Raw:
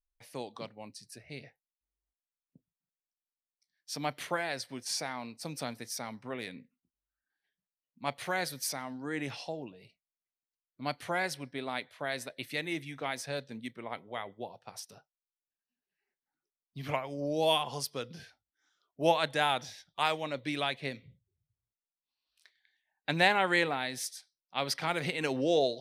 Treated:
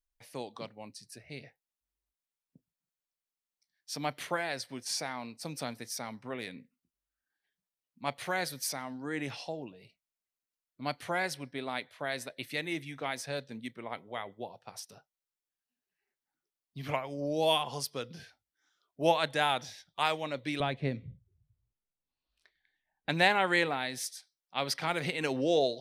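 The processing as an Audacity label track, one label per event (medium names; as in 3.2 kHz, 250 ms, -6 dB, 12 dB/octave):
20.600000	23.090000	tilt EQ -3.5 dB/octave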